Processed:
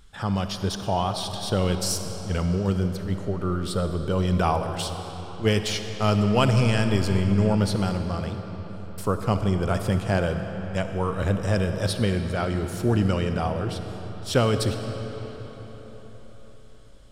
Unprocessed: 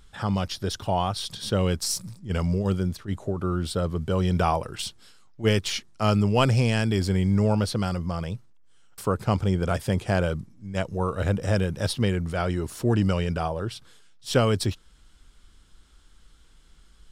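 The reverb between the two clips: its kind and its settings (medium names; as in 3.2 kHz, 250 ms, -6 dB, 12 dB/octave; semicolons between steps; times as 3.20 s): algorithmic reverb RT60 4.9 s, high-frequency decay 0.7×, pre-delay 15 ms, DRR 6.5 dB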